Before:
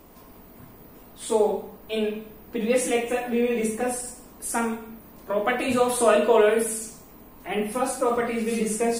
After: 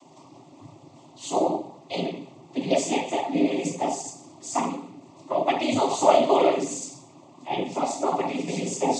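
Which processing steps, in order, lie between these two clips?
cochlear-implant simulation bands 16
phaser with its sweep stopped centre 310 Hz, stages 8
level +4.5 dB

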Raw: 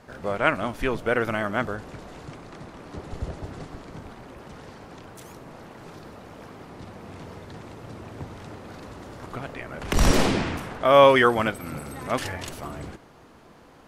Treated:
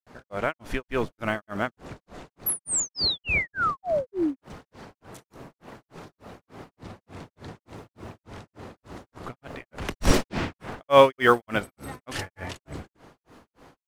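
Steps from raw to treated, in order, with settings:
in parallel at −9 dB: floating-point word with a short mantissa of 2 bits
on the sum: sound drawn into the spectrogram fall, 0:02.49–0:04.41, 230–12,000 Hz −21 dBFS
granular cloud 245 ms, grains 3.4 per second, pitch spread up and down by 0 semitones
level −1 dB

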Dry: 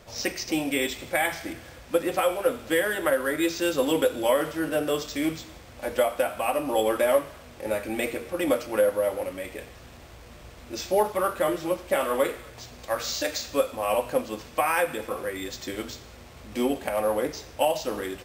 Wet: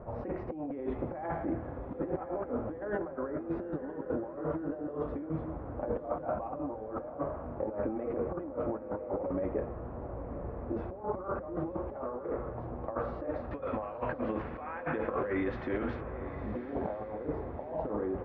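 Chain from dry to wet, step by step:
low-pass filter 1,100 Hz 24 dB per octave, from 0:13.51 1,800 Hz, from 0:16.01 1,100 Hz
compressor whose output falls as the input rises −36 dBFS, ratio −1
feedback delay with all-pass diffusion 986 ms, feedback 41%, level −11.5 dB
level −1 dB

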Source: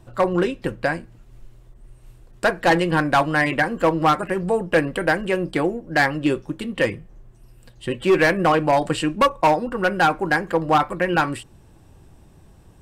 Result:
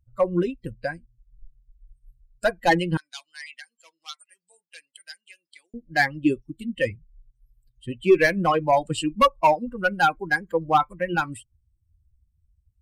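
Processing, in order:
spectral dynamics exaggerated over time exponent 2
0:02.97–0:05.74: flat-topped band-pass 5,900 Hz, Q 1.1
level +2 dB

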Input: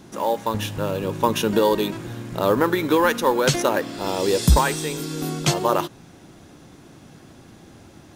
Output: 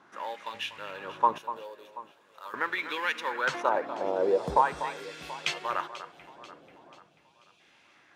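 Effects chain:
0:01.38–0:02.54: first difference
0:07.00–0:07.60: time-frequency box erased 220–2,300 Hz
LFO wah 0.42 Hz 550–2,500 Hz, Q 2.2
delay that swaps between a low-pass and a high-pass 244 ms, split 2,200 Hz, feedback 68%, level −12 dB

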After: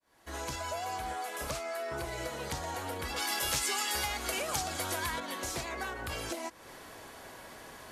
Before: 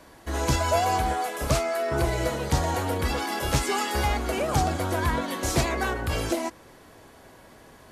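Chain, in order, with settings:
fade in at the beginning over 1.09 s
low-shelf EQ 500 Hz −9 dB
downward compressor 5 to 1, threshold −41 dBFS, peak gain reduction 16.5 dB
0:03.16–0:05.20: high-shelf EQ 2,200 Hz +10 dB
level +5 dB

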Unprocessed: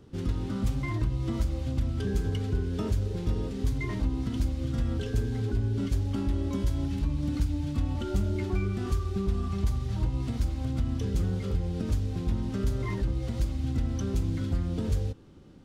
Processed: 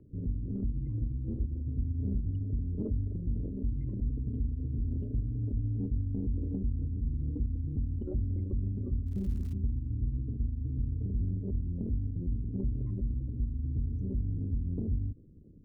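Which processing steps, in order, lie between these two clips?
spectral envelope exaggerated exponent 3
low-pass filter 1,800 Hz
0:09.06–0:09.52: surface crackle 110 per second → 440 per second −43 dBFS
tape wow and flutter 20 cents
amplitude modulation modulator 180 Hz, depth 40%
soft clipping −20 dBFS, distortion −23 dB
0:00.98–0:02.20: double-tracking delay 50 ms −8 dB

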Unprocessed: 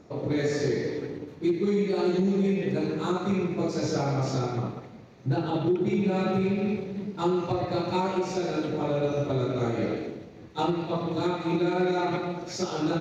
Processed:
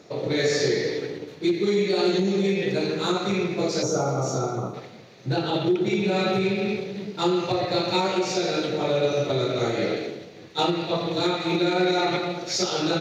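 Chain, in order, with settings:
high-pass filter 180 Hz 12 dB per octave
gain on a spectral selection 0:03.83–0:04.74, 1,500–5,500 Hz −15 dB
octave-band graphic EQ 250/1,000/4,000 Hz −9/−6/+5 dB
level +8 dB

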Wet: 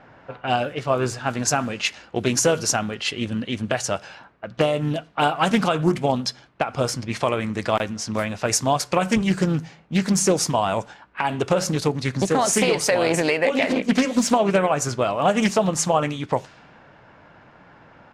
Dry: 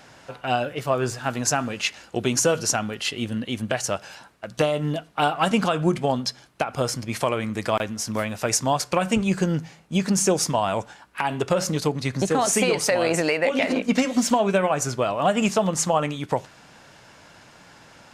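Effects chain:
pitch-shifted copies added −3 semitones −17 dB
low-pass that shuts in the quiet parts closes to 1,600 Hz, open at −20.5 dBFS
highs frequency-modulated by the lows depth 0.29 ms
level +1.5 dB

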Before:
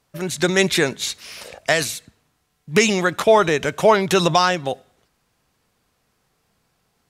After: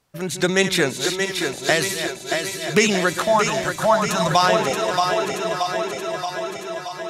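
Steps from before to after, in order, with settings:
feedback delay that plays each chunk backwards 313 ms, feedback 82%, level −10 dB
0:03.25–0:04.31: phaser with its sweep stopped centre 1,000 Hz, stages 4
feedback echo with a high-pass in the loop 629 ms, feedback 61%, high-pass 180 Hz, level −6 dB
level −1 dB

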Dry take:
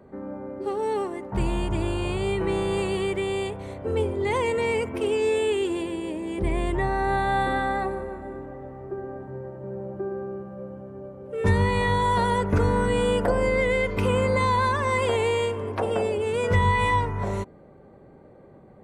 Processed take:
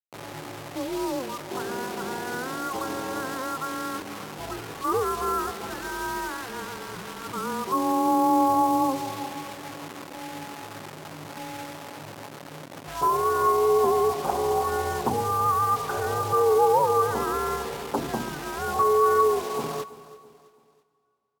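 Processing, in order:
single-sideband voice off tune −370 Hz 320–2,500 Hz
parametric band 1,300 Hz +10 dB 0.67 octaves
in parallel at −2.5 dB: brickwall limiter −22.5 dBFS, peak gain reduction 11 dB
on the sum: speed change −12%
bit reduction 6 bits
pitch shifter −4 semitones
high-pass filter 230 Hz 12 dB per octave
repeating echo 331 ms, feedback 43%, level −18.5 dB
on a send at −22 dB: convolution reverb RT60 3.1 s, pre-delay 14 ms

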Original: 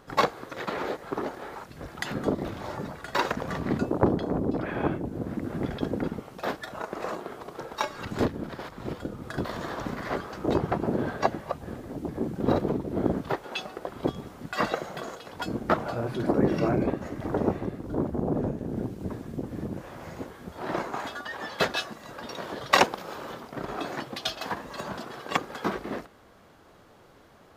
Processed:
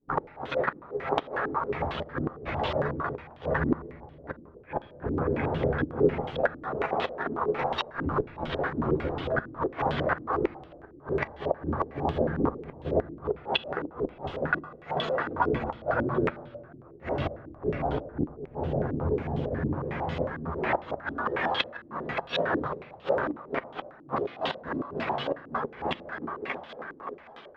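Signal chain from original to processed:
downward expander −42 dBFS
multi-voice chorus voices 6, 0.88 Hz, delay 13 ms, depth 1.4 ms
dynamic equaliser 230 Hz, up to −6 dB, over −43 dBFS, Q 1.4
in parallel at −2 dB: downward compressor 8 to 1, threshold −38 dBFS, peak gain reduction 19 dB
on the sum: mains-hum notches 50/100/150/200/250/300/350/400 Hz
feedback echo with a high-pass in the loop 572 ms, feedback 52%, high-pass 160 Hz, level −9 dB
gate with flip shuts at −21 dBFS, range −32 dB
on a send at −11 dB: convolution reverb RT60 1.6 s, pre-delay 7 ms
on the sum: low-pass on a step sequencer 11 Hz 300–3,200 Hz
level +3 dB

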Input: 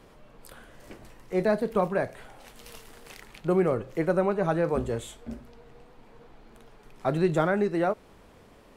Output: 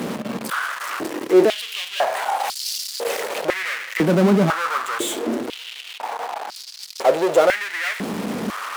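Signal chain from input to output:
power curve on the samples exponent 0.35
high-pass on a step sequencer 2 Hz 210–4,700 Hz
level −1.5 dB

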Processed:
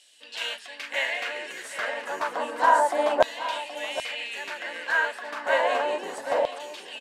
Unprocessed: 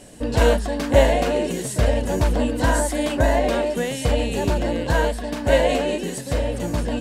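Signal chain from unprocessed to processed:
high-pass filter 260 Hz 12 dB per octave
spectral tilt −4 dB per octave
auto-filter high-pass saw down 0.31 Hz 760–3,500 Hz
single-tap delay 773 ms −12.5 dB

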